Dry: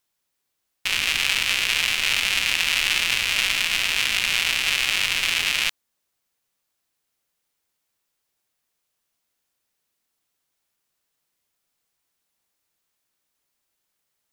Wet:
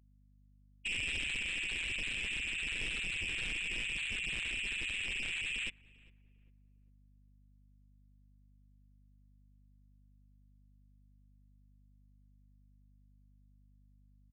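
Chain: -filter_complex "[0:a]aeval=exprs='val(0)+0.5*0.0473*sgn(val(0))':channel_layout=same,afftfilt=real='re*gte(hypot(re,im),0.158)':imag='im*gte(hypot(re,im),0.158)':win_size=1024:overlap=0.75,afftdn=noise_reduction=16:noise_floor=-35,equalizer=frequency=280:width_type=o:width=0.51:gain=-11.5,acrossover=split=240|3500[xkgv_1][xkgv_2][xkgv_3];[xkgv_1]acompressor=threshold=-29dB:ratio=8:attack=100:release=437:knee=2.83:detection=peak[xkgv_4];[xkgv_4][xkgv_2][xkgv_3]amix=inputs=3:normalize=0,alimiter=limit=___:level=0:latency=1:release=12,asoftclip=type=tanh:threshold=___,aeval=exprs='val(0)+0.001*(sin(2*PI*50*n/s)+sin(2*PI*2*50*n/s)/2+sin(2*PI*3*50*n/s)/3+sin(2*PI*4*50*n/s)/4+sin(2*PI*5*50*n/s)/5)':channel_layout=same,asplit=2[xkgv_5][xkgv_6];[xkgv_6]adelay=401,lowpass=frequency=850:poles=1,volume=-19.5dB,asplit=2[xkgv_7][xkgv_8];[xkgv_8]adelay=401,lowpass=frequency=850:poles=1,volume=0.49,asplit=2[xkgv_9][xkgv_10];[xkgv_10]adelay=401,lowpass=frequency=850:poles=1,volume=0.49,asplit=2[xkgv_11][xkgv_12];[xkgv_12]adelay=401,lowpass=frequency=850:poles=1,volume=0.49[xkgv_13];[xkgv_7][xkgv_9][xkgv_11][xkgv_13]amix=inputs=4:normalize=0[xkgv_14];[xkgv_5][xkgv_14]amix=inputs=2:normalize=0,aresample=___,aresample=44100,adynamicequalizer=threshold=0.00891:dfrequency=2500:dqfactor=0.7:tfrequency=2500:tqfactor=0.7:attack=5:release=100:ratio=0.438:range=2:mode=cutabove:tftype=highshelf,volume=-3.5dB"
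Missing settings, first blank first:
-12.5dB, -27.5dB, 22050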